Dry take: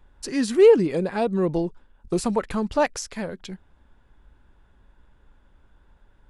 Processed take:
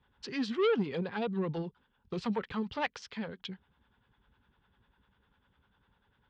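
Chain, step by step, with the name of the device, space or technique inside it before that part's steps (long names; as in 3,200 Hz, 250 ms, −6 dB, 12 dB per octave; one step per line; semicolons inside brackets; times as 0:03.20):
guitar amplifier with harmonic tremolo (two-band tremolo in antiphase 10 Hz, depth 70%, crossover 480 Hz; soft clipping −18.5 dBFS, distortion −11 dB; loudspeaker in its box 97–4,500 Hz, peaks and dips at 320 Hz −9 dB, 620 Hz −10 dB, 3,200 Hz +6 dB)
level −2.5 dB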